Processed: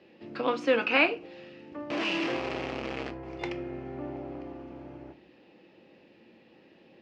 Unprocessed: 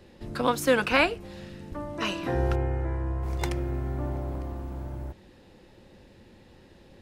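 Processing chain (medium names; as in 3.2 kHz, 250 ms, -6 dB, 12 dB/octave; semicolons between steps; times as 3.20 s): 1.90–3.11 s: one-bit comparator; cabinet simulation 240–4500 Hz, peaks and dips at 290 Hz +3 dB, 990 Hz -4 dB, 1.5 kHz -4 dB, 2.6 kHz +6 dB, 3.8 kHz -6 dB; simulated room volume 200 m³, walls furnished, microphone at 0.63 m; trim -2.5 dB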